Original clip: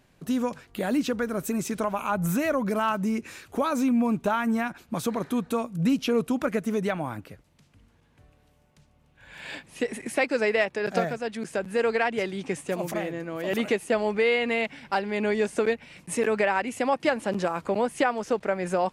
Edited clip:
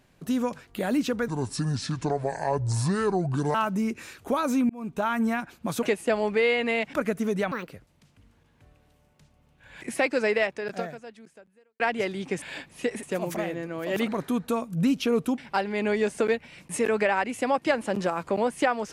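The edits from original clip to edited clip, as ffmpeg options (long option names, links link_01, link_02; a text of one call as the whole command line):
ffmpeg -i in.wav -filter_complex "[0:a]asplit=14[link_01][link_02][link_03][link_04][link_05][link_06][link_07][link_08][link_09][link_10][link_11][link_12][link_13][link_14];[link_01]atrim=end=1.284[link_15];[link_02]atrim=start=1.28:end=2.82,asetpts=PTS-STARTPTS,asetrate=29988,aresample=44100[link_16];[link_03]atrim=start=2.816:end=3.97,asetpts=PTS-STARTPTS,afade=type=out:start_time=1.15:duration=0.004:curve=hsin[link_17];[link_04]atrim=start=3.97:end=5.102,asetpts=PTS-STARTPTS,afade=type=in:duration=0.42[link_18];[link_05]atrim=start=13.648:end=14.762[link_19];[link_06]atrim=start=6.398:end=6.984[link_20];[link_07]atrim=start=6.98:end=7.24,asetpts=PTS-STARTPTS,asetrate=74529,aresample=44100[link_21];[link_08]atrim=start=7.236:end=9.392[link_22];[link_09]atrim=start=9.998:end=11.98,asetpts=PTS-STARTPTS,afade=type=out:start_time=0.512:duration=1.47:curve=qua[link_23];[link_10]atrim=start=11.98:end=12.602,asetpts=PTS-STARTPTS,afade=type=in:duration=0.004:curve=hsin[link_24];[link_11]atrim=start=9.388:end=10.002[link_25];[link_12]atrim=start=12.598:end=13.652[link_26];[link_13]atrim=start=5.098:end=6.402[link_27];[link_14]atrim=start=14.758[link_28];[link_15][link_16]acrossfade=duration=0.004:curve1=hsin:curve2=hsin[link_29];[link_17][link_18]concat=n=2:v=0:a=1[link_30];[link_29][link_30]acrossfade=duration=0.004:curve1=hsin:curve2=hsin[link_31];[link_31][link_19]acrossfade=duration=0.004:curve1=hsin:curve2=hsin[link_32];[link_32][link_20]acrossfade=duration=0.004:curve1=hsin:curve2=hsin[link_33];[link_33][link_21]acrossfade=duration=0.004:curve1=hsin:curve2=hsin[link_34];[link_34][link_22]acrossfade=duration=0.004:curve1=hsin:curve2=hsin[link_35];[link_23][link_24]concat=n=2:v=0:a=1[link_36];[link_35][link_36]acrossfade=duration=0.004:curve1=hsin:curve2=hsin[link_37];[link_37][link_25]acrossfade=duration=0.004:curve1=hsin:curve2=hsin[link_38];[link_38][link_26]acrossfade=duration=0.004:curve1=hsin:curve2=hsin[link_39];[link_39][link_27]acrossfade=duration=0.004:curve1=hsin:curve2=hsin[link_40];[link_40][link_28]acrossfade=duration=0.004:curve1=hsin:curve2=hsin" out.wav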